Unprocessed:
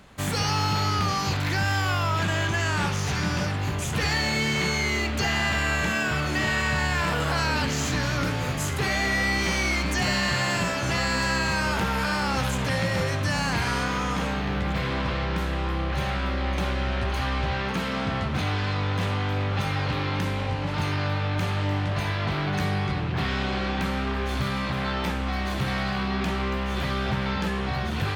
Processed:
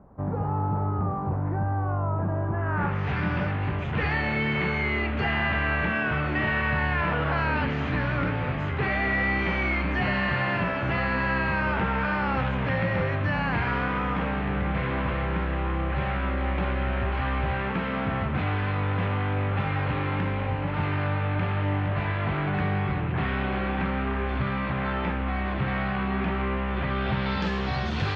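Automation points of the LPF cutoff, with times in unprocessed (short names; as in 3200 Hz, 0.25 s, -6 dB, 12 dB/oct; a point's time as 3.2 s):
LPF 24 dB/oct
2.45 s 1000 Hz
3.09 s 2600 Hz
26.88 s 2600 Hz
27.54 s 5900 Hz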